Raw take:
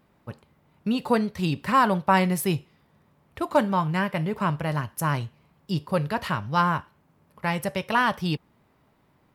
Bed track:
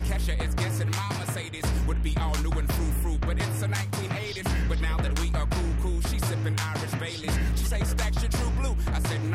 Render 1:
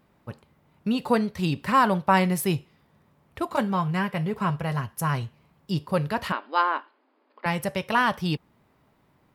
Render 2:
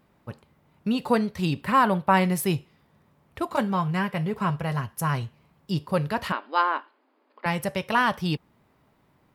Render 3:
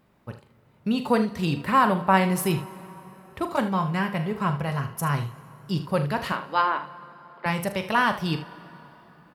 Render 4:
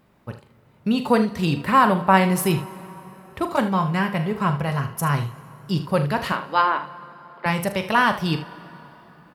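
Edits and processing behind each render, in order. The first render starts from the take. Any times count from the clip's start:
3.45–5.23 s: comb of notches 300 Hz; 6.32–7.46 s: brick-wall FIR band-pass 240–5100 Hz
1.61–2.22 s: peaking EQ 5.9 kHz -8 dB 0.69 oct
early reflections 42 ms -11 dB, 77 ms -13 dB; plate-style reverb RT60 4.2 s, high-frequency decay 0.7×, DRR 17 dB
trim +3.5 dB

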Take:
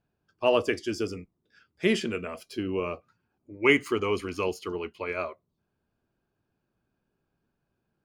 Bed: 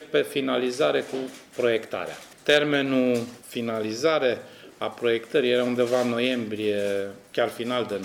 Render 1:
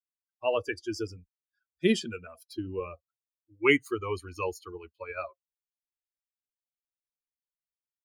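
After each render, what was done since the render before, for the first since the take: expander on every frequency bin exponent 2; gain riding within 3 dB 0.5 s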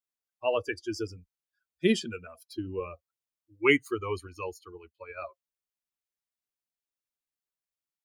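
4.27–5.22 s: gain -4.5 dB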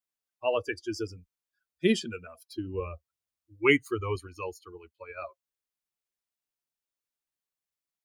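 2.74–4.16 s: peaking EQ 70 Hz +11.5 dB 1.1 oct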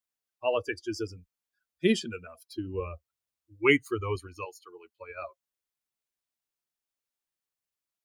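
4.44–4.93 s: high-pass 790 Hz -> 250 Hz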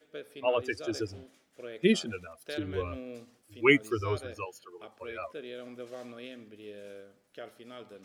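add bed -20.5 dB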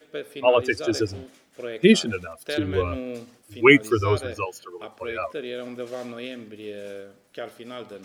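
trim +9.5 dB; peak limiter -2 dBFS, peak gain reduction 2.5 dB

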